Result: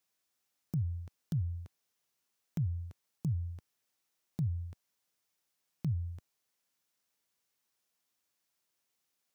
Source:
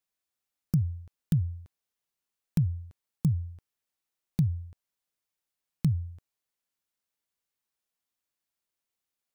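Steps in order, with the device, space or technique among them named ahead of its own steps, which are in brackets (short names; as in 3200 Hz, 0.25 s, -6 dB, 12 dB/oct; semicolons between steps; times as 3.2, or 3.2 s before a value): broadcast voice chain (HPF 86 Hz; de-esser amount 75%; compressor 3:1, threshold -33 dBFS, peak gain reduction 9 dB; bell 5700 Hz +3 dB 0.47 oct; limiter -31.5 dBFS, peak gain reduction 10 dB); gain +5 dB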